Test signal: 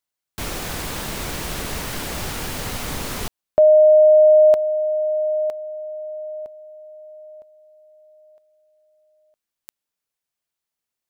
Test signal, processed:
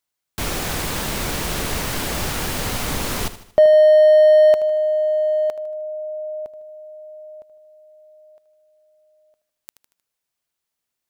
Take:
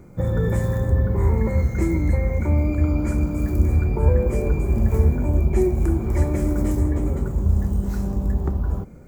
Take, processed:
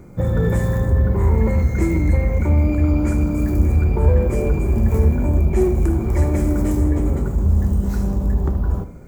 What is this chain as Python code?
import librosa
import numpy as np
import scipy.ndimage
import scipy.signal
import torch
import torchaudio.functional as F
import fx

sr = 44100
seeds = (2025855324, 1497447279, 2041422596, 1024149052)

p1 = np.clip(x, -10.0 ** (-19.0 / 20.0), 10.0 ** (-19.0 / 20.0))
p2 = x + (p1 * 10.0 ** (-6.0 / 20.0))
y = fx.echo_feedback(p2, sr, ms=77, feedback_pct=47, wet_db=-14)